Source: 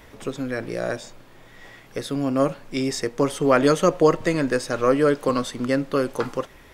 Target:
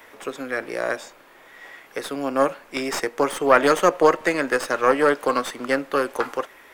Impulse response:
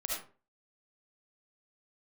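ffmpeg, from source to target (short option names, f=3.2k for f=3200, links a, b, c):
-filter_complex "[0:a]crystalizer=i=9:c=0,aeval=exprs='1.5*(cos(1*acos(clip(val(0)/1.5,-1,1)))-cos(1*PI/2))+0.188*(cos(6*acos(clip(val(0)/1.5,-1,1)))-cos(6*PI/2))':c=same,acrossover=split=270 2200:gain=0.112 1 0.112[a][b][c];[a][b][c]amix=inputs=3:normalize=0,volume=-1dB"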